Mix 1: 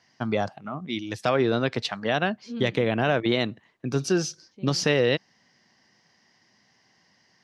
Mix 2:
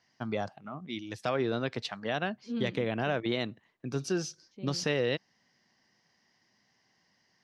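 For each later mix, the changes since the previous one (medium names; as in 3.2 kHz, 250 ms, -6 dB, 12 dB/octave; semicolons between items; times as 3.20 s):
first voice -7.5 dB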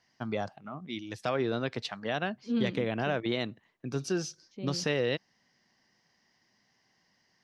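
second voice +5.0 dB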